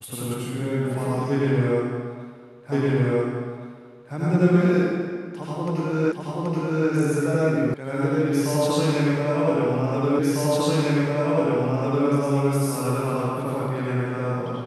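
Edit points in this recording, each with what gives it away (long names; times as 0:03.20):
0:02.72: the same again, the last 1.42 s
0:06.12: the same again, the last 0.78 s
0:07.74: cut off before it has died away
0:10.19: the same again, the last 1.9 s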